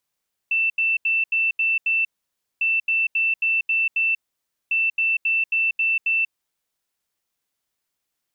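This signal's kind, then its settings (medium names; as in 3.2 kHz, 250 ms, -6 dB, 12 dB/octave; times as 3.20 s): beep pattern sine 2.67 kHz, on 0.19 s, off 0.08 s, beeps 6, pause 0.56 s, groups 3, -17.5 dBFS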